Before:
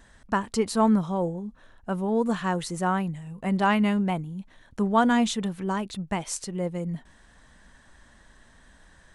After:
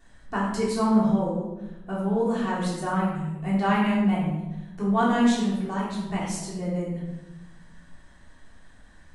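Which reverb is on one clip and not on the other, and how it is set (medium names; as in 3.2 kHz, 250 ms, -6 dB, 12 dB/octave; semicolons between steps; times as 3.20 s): simulated room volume 400 m³, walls mixed, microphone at 3.4 m; trim -9.5 dB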